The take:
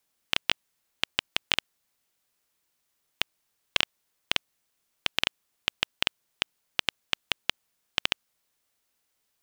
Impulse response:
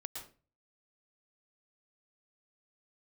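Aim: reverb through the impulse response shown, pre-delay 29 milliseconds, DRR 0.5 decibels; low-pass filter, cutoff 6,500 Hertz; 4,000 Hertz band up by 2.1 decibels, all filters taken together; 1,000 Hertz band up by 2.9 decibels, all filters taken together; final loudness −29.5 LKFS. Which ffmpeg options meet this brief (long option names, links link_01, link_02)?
-filter_complex "[0:a]lowpass=6500,equalizer=frequency=1000:width_type=o:gain=3.5,equalizer=frequency=4000:width_type=o:gain=3,asplit=2[link_01][link_02];[1:a]atrim=start_sample=2205,adelay=29[link_03];[link_02][link_03]afir=irnorm=-1:irlink=0,volume=1.5dB[link_04];[link_01][link_04]amix=inputs=2:normalize=0,volume=-3dB"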